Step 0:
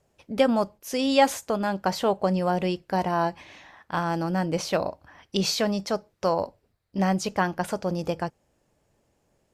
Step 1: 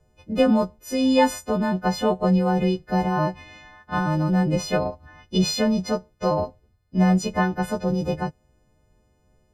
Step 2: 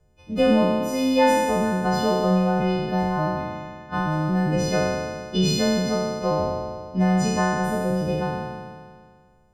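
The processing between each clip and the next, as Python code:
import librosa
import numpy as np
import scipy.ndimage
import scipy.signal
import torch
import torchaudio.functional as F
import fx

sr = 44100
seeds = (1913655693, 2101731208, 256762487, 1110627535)

y1 = fx.freq_snap(x, sr, grid_st=3)
y1 = fx.riaa(y1, sr, side='playback')
y1 = F.gain(torch.from_numpy(y1), -1.0).numpy()
y2 = fx.spec_trails(y1, sr, decay_s=1.87)
y2 = F.gain(torch.from_numpy(y2), -2.5).numpy()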